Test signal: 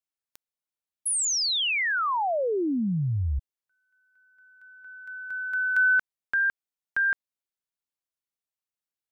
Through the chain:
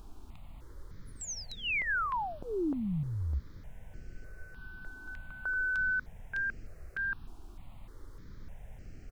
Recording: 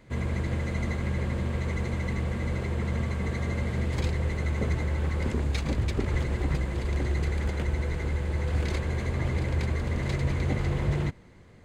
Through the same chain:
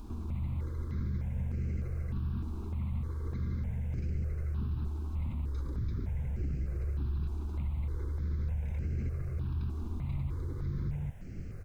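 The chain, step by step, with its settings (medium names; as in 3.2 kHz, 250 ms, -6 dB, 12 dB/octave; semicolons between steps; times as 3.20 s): low-pass 6 kHz 24 dB/octave; tilt shelf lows +6.5 dB, about 830 Hz; comb 0.8 ms, depth 60%; compression, threshold -29 dBFS; peak limiter -29.5 dBFS; added noise brown -47 dBFS; stepped phaser 3.3 Hz 530–3600 Hz; trim +2.5 dB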